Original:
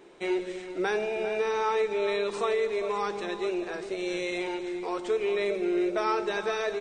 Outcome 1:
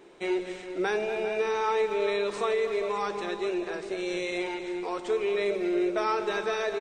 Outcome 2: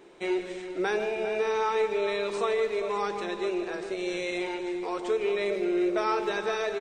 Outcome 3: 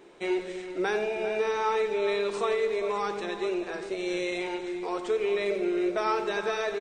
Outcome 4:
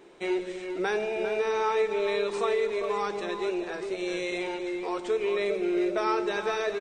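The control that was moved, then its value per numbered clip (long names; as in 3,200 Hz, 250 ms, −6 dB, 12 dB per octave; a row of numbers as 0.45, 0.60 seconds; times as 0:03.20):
far-end echo of a speakerphone, delay time: 240, 150, 90, 400 milliseconds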